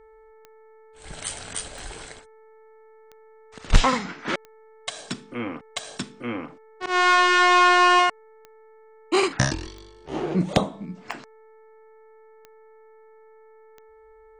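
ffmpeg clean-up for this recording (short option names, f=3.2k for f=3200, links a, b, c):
-af "adeclick=t=4,bandreject=f=439.3:t=h:w=4,bandreject=f=878.6:t=h:w=4,bandreject=f=1.3179k:t=h:w=4,bandreject=f=1.7572k:t=h:w=4,bandreject=f=2.1965k:t=h:w=4"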